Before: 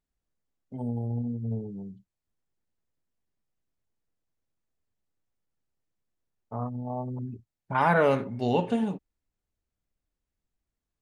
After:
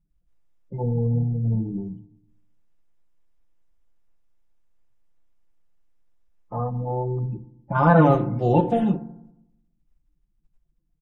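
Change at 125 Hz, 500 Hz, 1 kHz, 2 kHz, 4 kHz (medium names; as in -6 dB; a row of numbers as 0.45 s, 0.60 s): +10.5 dB, +5.0 dB, +5.0 dB, 0.0 dB, no reading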